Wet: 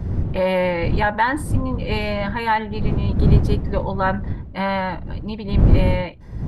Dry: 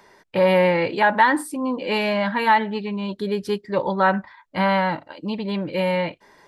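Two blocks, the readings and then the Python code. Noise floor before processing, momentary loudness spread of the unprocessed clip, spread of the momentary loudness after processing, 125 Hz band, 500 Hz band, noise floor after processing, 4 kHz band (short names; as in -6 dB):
-57 dBFS, 11 LU, 10 LU, +12.0 dB, -2.0 dB, -34 dBFS, -2.5 dB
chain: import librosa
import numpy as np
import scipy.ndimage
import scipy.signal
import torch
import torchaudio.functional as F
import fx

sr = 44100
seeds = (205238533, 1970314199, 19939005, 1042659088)

y = fx.dmg_wind(x, sr, seeds[0], corner_hz=120.0, level_db=-18.0)
y = y * librosa.db_to_amplitude(-2.5)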